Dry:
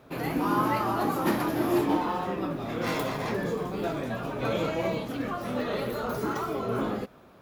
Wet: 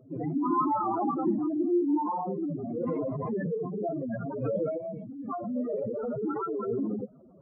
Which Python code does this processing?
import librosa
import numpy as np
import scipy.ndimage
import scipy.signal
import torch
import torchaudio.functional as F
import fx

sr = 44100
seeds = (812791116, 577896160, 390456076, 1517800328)

y = fx.spec_expand(x, sr, power=4.0)
y = fx.peak_eq(y, sr, hz=430.0, db=-12.0, octaves=1.6, at=(4.77, 5.27), fade=0.02)